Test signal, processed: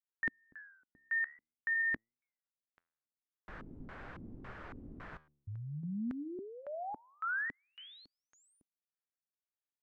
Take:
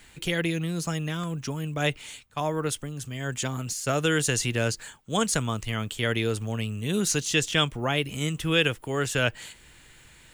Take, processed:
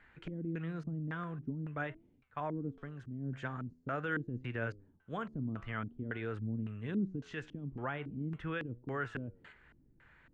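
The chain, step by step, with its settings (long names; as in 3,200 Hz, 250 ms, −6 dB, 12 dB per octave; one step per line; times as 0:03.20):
brickwall limiter −18.5 dBFS
flanger 0.45 Hz, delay 7.5 ms, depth 7.7 ms, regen +88%
auto-filter low-pass square 1.8 Hz 270–1,600 Hz
level −6 dB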